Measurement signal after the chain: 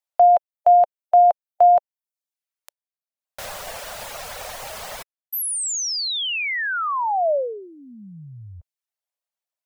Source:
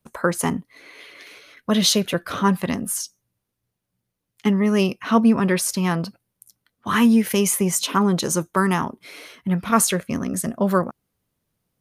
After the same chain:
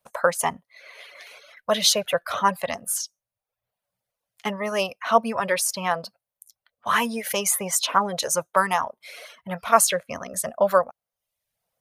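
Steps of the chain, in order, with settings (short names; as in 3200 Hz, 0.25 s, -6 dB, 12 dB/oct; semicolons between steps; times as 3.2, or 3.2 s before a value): reverb removal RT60 0.69 s; resonant low shelf 440 Hz -10.5 dB, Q 3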